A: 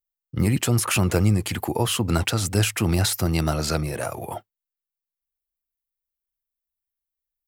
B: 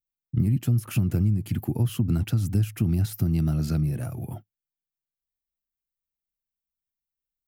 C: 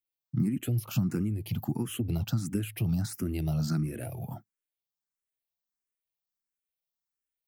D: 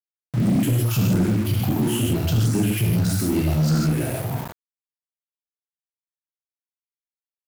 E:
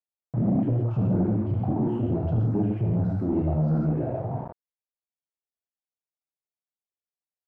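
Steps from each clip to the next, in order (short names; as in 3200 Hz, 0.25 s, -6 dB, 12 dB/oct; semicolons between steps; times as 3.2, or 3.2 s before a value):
graphic EQ 125/250/500/1000/2000/4000/8000 Hz +10/+6/-10/-11/-7/-8/-11 dB; compressor, threshold -16 dBFS, peak gain reduction 9 dB; gain -3 dB
low shelf 110 Hz -12 dB; endless phaser +1.5 Hz; gain +2 dB
non-linear reverb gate 0.19 s flat, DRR -4.5 dB; sample gate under -36.5 dBFS; sample leveller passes 2
synth low-pass 730 Hz, resonance Q 1.7; gain -4.5 dB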